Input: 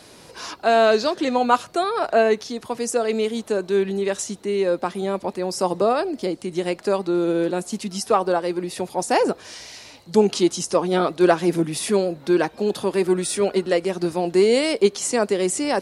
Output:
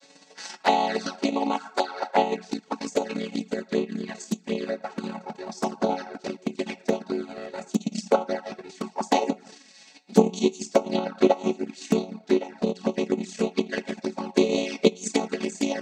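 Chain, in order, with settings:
channel vocoder with a chord as carrier minor triad, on F#3
convolution reverb RT60 0.80 s, pre-delay 4 ms, DRR 3 dB
transient designer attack +11 dB, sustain −9 dB
flanger swept by the level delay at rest 7.4 ms, full sweep at −11.5 dBFS
spectral tilt +4.5 dB per octave
level −2 dB

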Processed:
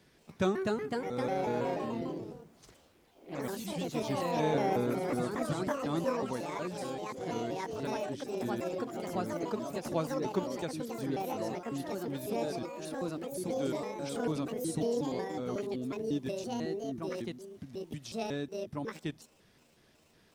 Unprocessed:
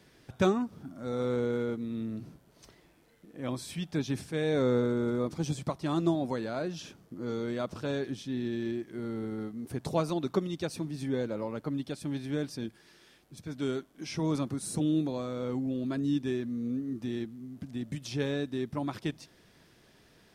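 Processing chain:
pitch shifter gated in a rhythm +7.5 semitones, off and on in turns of 183 ms
delay with pitch and tempo change per echo 296 ms, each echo +2 semitones, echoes 3
level −4 dB

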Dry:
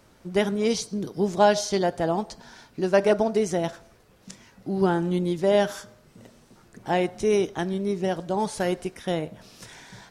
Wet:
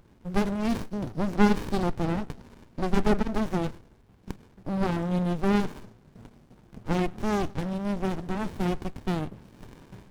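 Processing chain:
windowed peak hold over 65 samples
level +2 dB

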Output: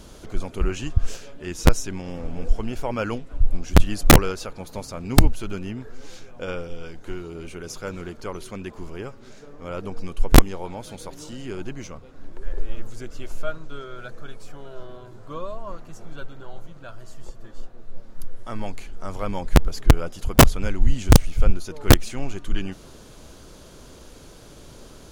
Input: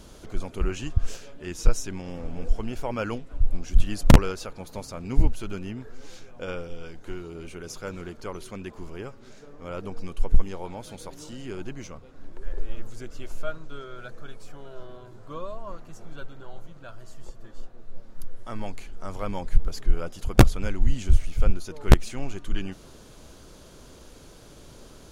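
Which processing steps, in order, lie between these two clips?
wrap-around overflow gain 7 dB
level +3 dB

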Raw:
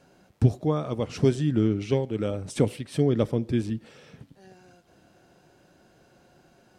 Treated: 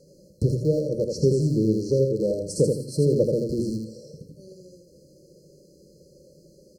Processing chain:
loose part that buzzes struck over −30 dBFS, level −22 dBFS
mains-hum notches 60/120/180/240/300/360 Hz
brick-wall band-stop 620–4,100 Hz
thirty-one-band graphic EQ 100 Hz −10 dB, 160 Hz +3 dB, 250 Hz −9 dB, 500 Hz +5 dB
in parallel at −1 dB: downward compressor, threshold −33 dBFS, peak gain reduction 16 dB
on the sum: repeating echo 82 ms, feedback 29%, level −4 dB

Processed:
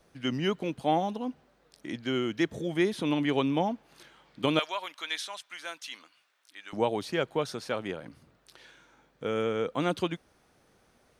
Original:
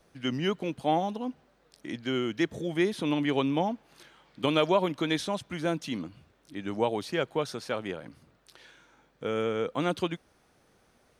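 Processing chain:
0:04.59–0:06.73: high-pass filter 1,300 Hz 12 dB per octave

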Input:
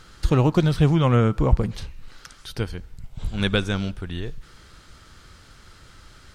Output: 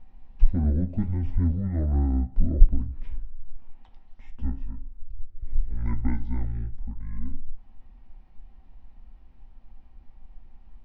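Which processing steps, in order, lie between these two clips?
spectral tilt −4 dB per octave
change of speed 0.585×
on a send: convolution reverb RT60 0.35 s, pre-delay 3 ms, DRR 5 dB
on the sum: level −16.5 dB

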